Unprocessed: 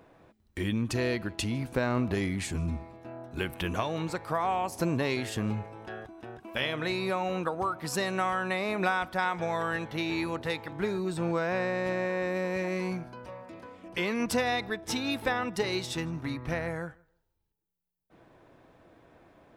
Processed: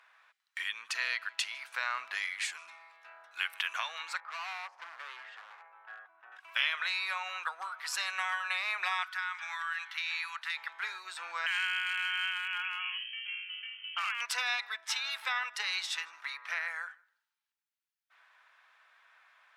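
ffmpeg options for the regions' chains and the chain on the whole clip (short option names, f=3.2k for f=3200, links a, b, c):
-filter_complex "[0:a]asettb=1/sr,asplit=3[a][b][c];[a]atrim=end=4.204[d];[b]atrim=start=4.2:end=6.32,asetpts=PTS-STARTPTS,afade=t=in:d=0.004:c=qsin,afade=t=out:st=2.116:d=0.004:c=qsin,lowpass=1.2k,asoftclip=type=hard:threshold=-33dB[e];[c]atrim=start=6.316[f];[d][e]acrossfade=d=0.004:c1=hsin:c2=qsin[g];[g][f]acrossfade=d=0.004:c1=qsin:c2=hsin,asettb=1/sr,asplit=3[h][i][j];[h]atrim=end=9.034[k];[i]atrim=start=9.03:end=10.57,asetpts=PTS-STARTPTS,afade=t=in:d=0.004:c=qsin,afade=t=out:st=1.536:d=0.004:c=qsin,highpass=f=990:w=0.5412,highpass=f=990:w=1.3066,acompressor=threshold=-33dB:ratio=6:attack=3.2:release=140:knee=1:detection=peak[l];[j]atrim=start=10.566[m];[k][l]acrossfade=d=0.004:c1=hsin:c2=qsin[n];[n][m]acrossfade=d=0.004:c1=qsin:c2=hsin,asettb=1/sr,asplit=3[o][p][q];[o]atrim=end=11.464[r];[p]atrim=start=11.46:end=14.21,asetpts=PTS-STARTPTS,afade=t=in:d=0.004:c=qsin,afade=t=out:st=2.746:d=0.004:c=qsin,adynamicsmooth=sensitivity=6.5:basefreq=1.2k,lowpass=f=2.8k:t=q:w=0.5098,lowpass=f=2.8k:t=q:w=0.6013,lowpass=f=2.8k:t=q:w=0.9,lowpass=f=2.8k:t=q:w=2.563,afreqshift=-3300,volume=23.5dB,asoftclip=hard,volume=-23.5dB[s];[q]atrim=start=14.206[t];[r][s]acrossfade=d=0.004:c1=hsin:c2=qsin[u];[u][t]acrossfade=d=0.004:c1=qsin:c2=hsin,highpass=f=1.3k:w=0.5412,highpass=f=1.3k:w=1.3066,afftfilt=real='re*lt(hypot(re,im),0.112)':imag='im*lt(hypot(re,im),0.112)':win_size=1024:overlap=0.75,aemphasis=mode=reproduction:type=50kf,volume=6.5dB"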